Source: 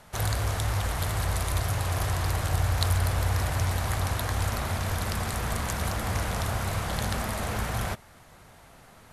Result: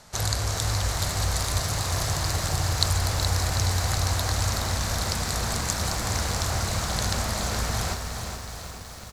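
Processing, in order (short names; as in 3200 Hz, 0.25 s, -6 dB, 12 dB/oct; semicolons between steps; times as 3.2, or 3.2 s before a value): band shelf 5600 Hz +9 dB 1.2 oct; feedback echo 0.421 s, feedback 44%, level -8 dB; lo-fi delay 0.372 s, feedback 80%, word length 7-bit, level -11 dB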